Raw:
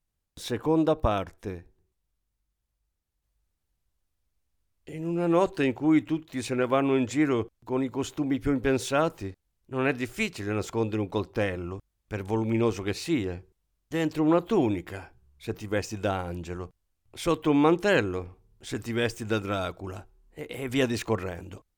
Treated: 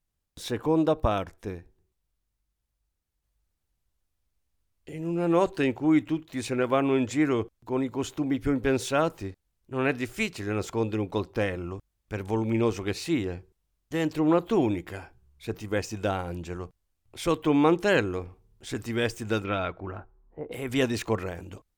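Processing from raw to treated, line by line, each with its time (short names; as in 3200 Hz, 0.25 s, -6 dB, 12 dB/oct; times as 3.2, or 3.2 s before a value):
19.43–20.51 synth low-pass 3200 Hz -> 740 Hz, resonance Q 1.6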